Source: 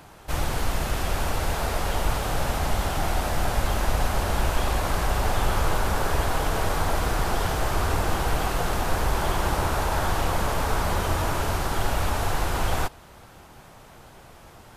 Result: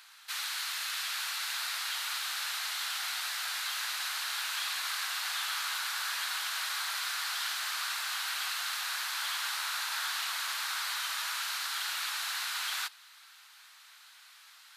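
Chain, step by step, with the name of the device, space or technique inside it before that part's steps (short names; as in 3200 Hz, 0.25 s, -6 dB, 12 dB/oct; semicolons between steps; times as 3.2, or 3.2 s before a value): headphones lying on a table (HPF 1400 Hz 24 dB/oct; bell 4100 Hz +8 dB 0.51 oct); gain -2 dB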